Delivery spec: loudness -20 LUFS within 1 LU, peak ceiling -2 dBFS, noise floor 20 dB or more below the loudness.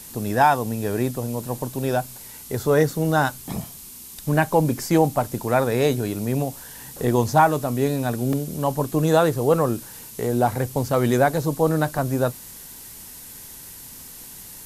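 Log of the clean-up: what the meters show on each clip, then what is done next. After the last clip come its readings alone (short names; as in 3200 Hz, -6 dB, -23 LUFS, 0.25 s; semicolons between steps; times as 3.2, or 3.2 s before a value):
dropouts 3; longest dropout 1.7 ms; noise floor -41 dBFS; noise floor target -42 dBFS; loudness -22.0 LUFS; peak -6.0 dBFS; loudness target -20.0 LUFS
-> interpolate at 2.9/8.33/11.98, 1.7 ms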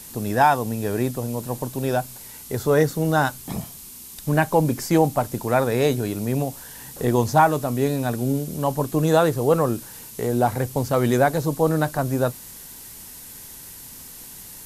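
dropouts 0; noise floor -41 dBFS; noise floor target -42 dBFS
-> denoiser 6 dB, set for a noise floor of -41 dBFS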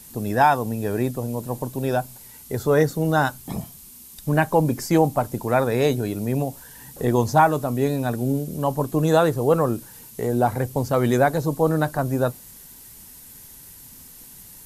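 noise floor -45 dBFS; loudness -22.0 LUFS; peak -6.0 dBFS; loudness target -20.0 LUFS
-> gain +2 dB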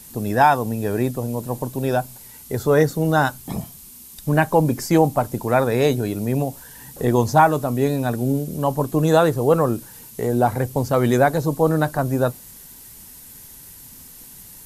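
loudness -20.0 LUFS; peak -4.0 dBFS; noise floor -43 dBFS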